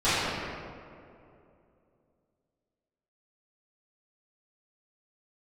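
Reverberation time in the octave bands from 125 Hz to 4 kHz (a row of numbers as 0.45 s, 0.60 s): 2.9 s, 2.9 s, 2.9 s, 2.3 s, 1.8 s, 1.2 s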